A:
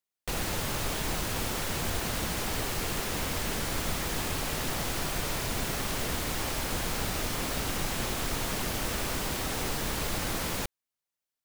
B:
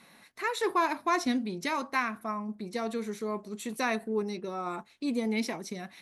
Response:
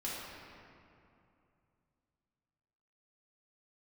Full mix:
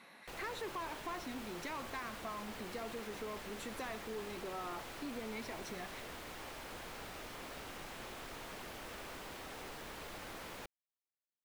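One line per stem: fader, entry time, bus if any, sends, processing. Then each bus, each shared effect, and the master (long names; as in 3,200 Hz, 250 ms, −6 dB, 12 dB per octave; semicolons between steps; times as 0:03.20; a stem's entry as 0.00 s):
−12.0 dB, 0.00 s, no send, no processing
+0.5 dB, 0.00 s, no send, downward compressor, threshold −38 dBFS, peak gain reduction 15 dB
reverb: not used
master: bass and treble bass −9 dB, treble −8 dB; soft clipping −35.5 dBFS, distortion −15 dB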